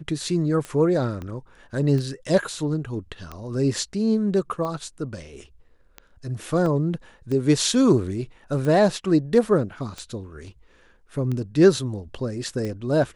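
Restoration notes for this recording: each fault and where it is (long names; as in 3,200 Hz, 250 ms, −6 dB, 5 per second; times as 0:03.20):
scratch tick 45 rpm −19 dBFS
0:01.22: click −22 dBFS
0:06.66: drop-out 2.6 ms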